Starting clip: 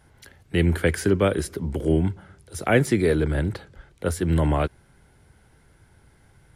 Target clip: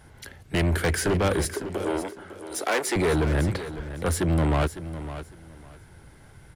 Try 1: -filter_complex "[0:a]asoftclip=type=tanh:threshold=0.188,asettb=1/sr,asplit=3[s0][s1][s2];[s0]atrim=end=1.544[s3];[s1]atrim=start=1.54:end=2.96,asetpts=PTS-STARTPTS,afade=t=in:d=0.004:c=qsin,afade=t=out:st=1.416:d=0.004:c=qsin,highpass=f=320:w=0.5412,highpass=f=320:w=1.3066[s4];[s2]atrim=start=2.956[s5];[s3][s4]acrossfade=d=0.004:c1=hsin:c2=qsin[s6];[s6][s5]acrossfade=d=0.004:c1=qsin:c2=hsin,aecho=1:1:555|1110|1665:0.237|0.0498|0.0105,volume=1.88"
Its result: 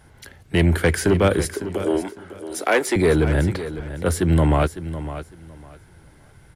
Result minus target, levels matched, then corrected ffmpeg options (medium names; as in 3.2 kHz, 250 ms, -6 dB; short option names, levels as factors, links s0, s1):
saturation: distortion -8 dB
-filter_complex "[0:a]asoftclip=type=tanh:threshold=0.0562,asettb=1/sr,asplit=3[s0][s1][s2];[s0]atrim=end=1.544[s3];[s1]atrim=start=1.54:end=2.96,asetpts=PTS-STARTPTS,afade=t=in:d=0.004:c=qsin,afade=t=out:st=1.416:d=0.004:c=qsin,highpass=f=320:w=0.5412,highpass=f=320:w=1.3066[s4];[s2]atrim=start=2.956[s5];[s3][s4]acrossfade=d=0.004:c1=hsin:c2=qsin[s6];[s6][s5]acrossfade=d=0.004:c1=qsin:c2=hsin,aecho=1:1:555|1110|1665:0.237|0.0498|0.0105,volume=1.88"